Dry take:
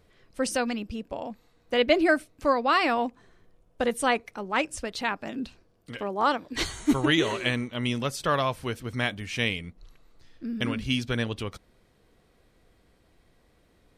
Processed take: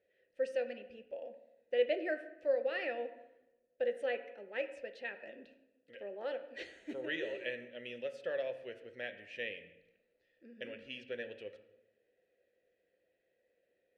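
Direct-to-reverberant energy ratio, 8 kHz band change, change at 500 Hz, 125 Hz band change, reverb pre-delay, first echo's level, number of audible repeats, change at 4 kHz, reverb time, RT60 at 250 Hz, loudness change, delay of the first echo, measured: 8.0 dB, under -30 dB, -7.5 dB, -31.5 dB, 3 ms, none, none, -18.0 dB, 0.90 s, 1.1 s, -12.5 dB, none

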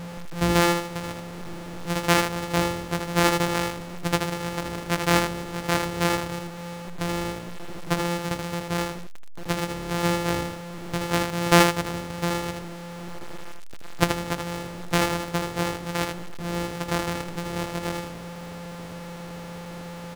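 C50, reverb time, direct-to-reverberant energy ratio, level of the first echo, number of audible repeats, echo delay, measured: none, none, none, -5.5 dB, 1, 79 ms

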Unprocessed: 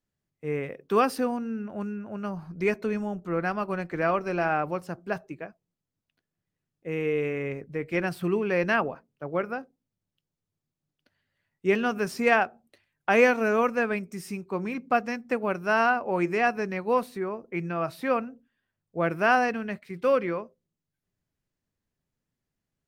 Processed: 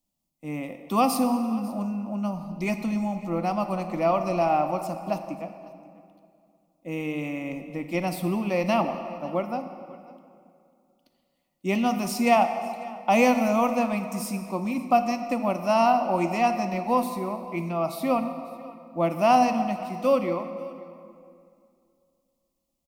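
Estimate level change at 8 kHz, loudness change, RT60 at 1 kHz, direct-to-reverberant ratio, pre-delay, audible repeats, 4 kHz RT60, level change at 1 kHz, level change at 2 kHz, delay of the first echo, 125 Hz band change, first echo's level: +8.0 dB, +1.5 dB, 2.3 s, 8.0 dB, 25 ms, 1, 1.6 s, +4.5 dB, -6.0 dB, 0.545 s, +2.5 dB, -21.0 dB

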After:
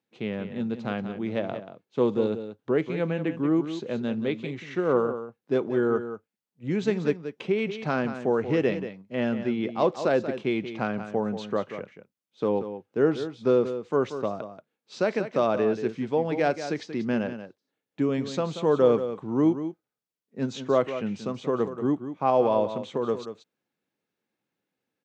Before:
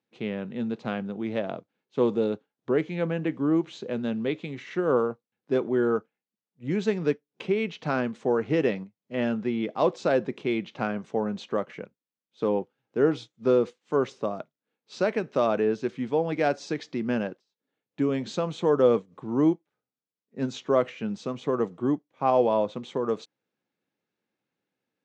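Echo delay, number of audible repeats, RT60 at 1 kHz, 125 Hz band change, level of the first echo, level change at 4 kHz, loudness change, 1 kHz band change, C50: 0.183 s, 1, none, +1.0 dB, -10.5 dB, +0.5 dB, +0.5 dB, +0.5 dB, none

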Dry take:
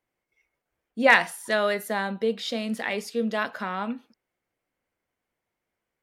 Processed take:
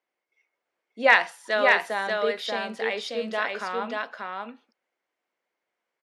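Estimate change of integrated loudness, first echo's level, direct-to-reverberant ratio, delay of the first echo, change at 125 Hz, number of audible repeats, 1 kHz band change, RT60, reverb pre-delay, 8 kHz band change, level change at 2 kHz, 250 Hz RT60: +0.5 dB, -3.0 dB, none, 0.585 s, n/a, 1, +1.5 dB, none, none, -5.5 dB, +1.5 dB, none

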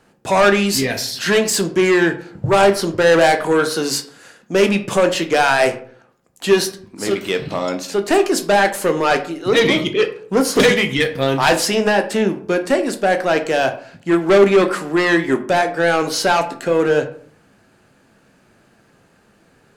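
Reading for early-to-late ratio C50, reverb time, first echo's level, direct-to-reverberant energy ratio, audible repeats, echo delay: 13.0 dB, 0.55 s, none, 6.5 dB, none, none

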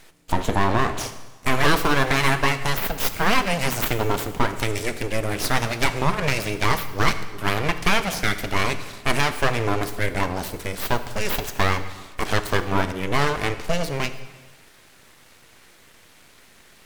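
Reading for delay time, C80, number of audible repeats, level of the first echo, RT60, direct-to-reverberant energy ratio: none, 13.0 dB, none, none, 1.3 s, 10.0 dB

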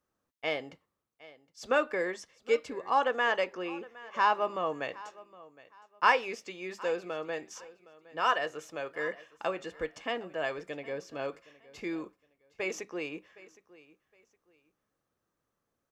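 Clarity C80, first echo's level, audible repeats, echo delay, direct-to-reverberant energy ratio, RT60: none, -20.0 dB, 2, 0.764 s, none, none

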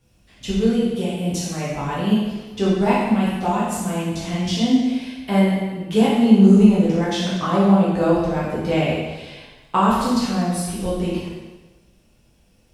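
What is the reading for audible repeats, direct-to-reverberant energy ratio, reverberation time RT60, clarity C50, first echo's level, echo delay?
none, -8.5 dB, 1.2 s, -0.5 dB, none, none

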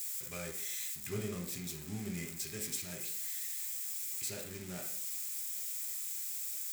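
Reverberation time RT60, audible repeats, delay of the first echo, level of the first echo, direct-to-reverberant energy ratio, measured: 0.55 s, none, none, none, 1.0 dB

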